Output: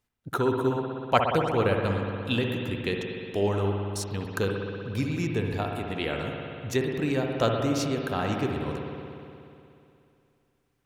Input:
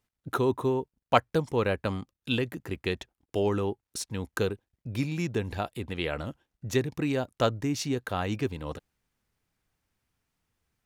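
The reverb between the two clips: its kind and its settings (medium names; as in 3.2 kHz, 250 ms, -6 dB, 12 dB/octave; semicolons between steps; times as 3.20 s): spring tank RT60 2.7 s, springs 60 ms, chirp 60 ms, DRR 1 dB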